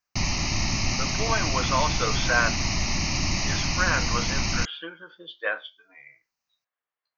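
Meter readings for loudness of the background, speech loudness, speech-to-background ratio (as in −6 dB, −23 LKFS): −26.0 LKFS, −28.5 LKFS, −2.5 dB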